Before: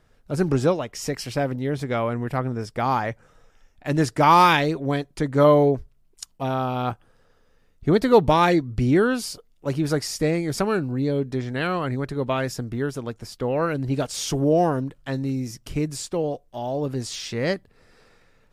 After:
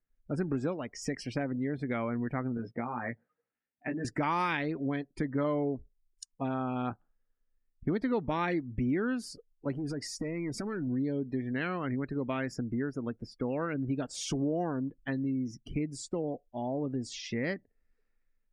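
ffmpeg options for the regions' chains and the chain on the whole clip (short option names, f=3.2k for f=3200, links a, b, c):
-filter_complex "[0:a]asettb=1/sr,asplit=3[a][b][c];[a]atrim=end=2.574[d];[b]atrim=start=2.57:end=4.05,asetpts=PTS-STARTPTS,afade=t=in:d=0.004:c=qsin,afade=t=out:st=1.476:d=0.004:c=qsin,acompressor=threshold=-26dB:ratio=12:attack=3.2:release=140:knee=1:detection=peak,highpass=120,lowpass=3.5k,asplit=2[e][f];[f]adelay=17,volume=-3.5dB[g];[e][g]amix=inputs=2:normalize=0,atrim=end_sample=65268[h];[c]atrim=start=4.046[i];[d][h]acrossfade=d=0.004:c1=hsin:c2=qsin[j];[j][i]acrossfade=d=0.004:c1=qsin:c2=hsin,asettb=1/sr,asplit=3[k][l][m];[k]atrim=end=9.724[n];[l]atrim=start=9.72:end=10.87,asetpts=PTS-STARTPTS,afade=t=in:d=0.004:c=qsin,afade=t=out:st=1.146:d=0.004:c=qsin,acompressor=threshold=-24dB:ratio=16:attack=3.2:release=140:knee=1:detection=peak,volume=26.5dB,asoftclip=hard,volume=-26.5dB[o];[m]atrim=start=10.866[p];[n][o]acrossfade=d=0.004:c1=hsin:c2=qsin[q];[q][p]acrossfade=d=0.004:c1=qsin:c2=hsin,afftdn=nr=27:nf=-39,equalizer=f=250:t=o:w=1:g=9,equalizer=f=2k:t=o:w=1:g=9,equalizer=f=4k:t=o:w=1:g=-3,acompressor=threshold=-23dB:ratio=3,volume=-7.5dB"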